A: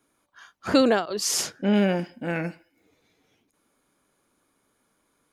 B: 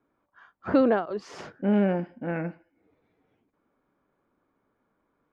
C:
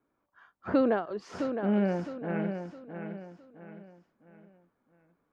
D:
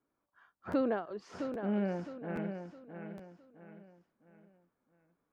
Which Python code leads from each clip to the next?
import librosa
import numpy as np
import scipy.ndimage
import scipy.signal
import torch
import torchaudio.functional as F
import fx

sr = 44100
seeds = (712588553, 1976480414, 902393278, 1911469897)

y1 = scipy.signal.sosfilt(scipy.signal.butter(2, 1500.0, 'lowpass', fs=sr, output='sos'), x)
y1 = y1 * 10.0 ** (-1.5 / 20.0)
y2 = fx.echo_feedback(y1, sr, ms=662, feedback_pct=38, wet_db=-7.5)
y2 = y2 * 10.0 ** (-4.0 / 20.0)
y3 = fx.buffer_crackle(y2, sr, first_s=0.71, period_s=0.82, block=512, kind='repeat')
y3 = y3 * 10.0 ** (-6.0 / 20.0)